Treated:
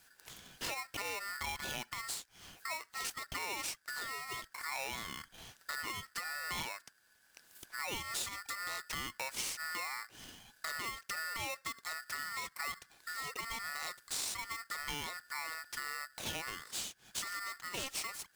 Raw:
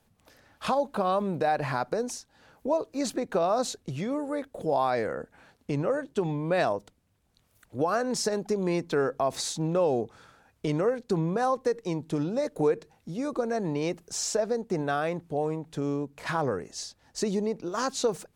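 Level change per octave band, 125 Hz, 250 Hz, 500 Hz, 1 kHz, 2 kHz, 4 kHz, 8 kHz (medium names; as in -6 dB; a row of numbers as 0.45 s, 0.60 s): -21.5 dB, -24.5 dB, -25.0 dB, -12.0 dB, -0.5 dB, -1.0 dB, -3.5 dB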